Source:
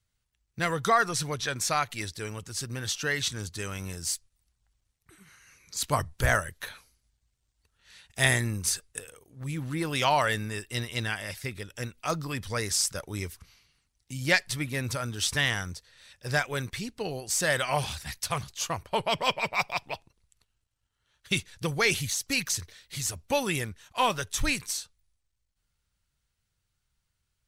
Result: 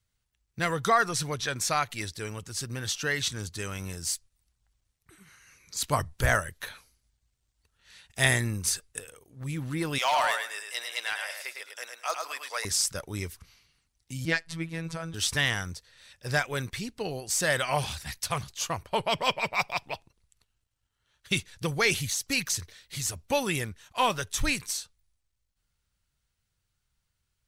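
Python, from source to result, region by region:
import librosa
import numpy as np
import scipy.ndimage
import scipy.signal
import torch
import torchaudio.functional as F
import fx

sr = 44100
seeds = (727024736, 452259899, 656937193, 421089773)

y = fx.chain(x, sr, fx.highpass(hz=610.0, slope=24),
    fx.echo_feedback(ms=105, feedback_pct=22, wet_db=-5),
    fx.clip_hard(threshold_db=-19.0), at=(9.98, 12.65))
y = fx.chain(y, sr, fx.lowpass(hz=9700.0, slope=12),
    fx.high_shelf(hz=3200.0, db=-7.5),
    fx.robotise(hz=164.0), at=(14.25, 15.14))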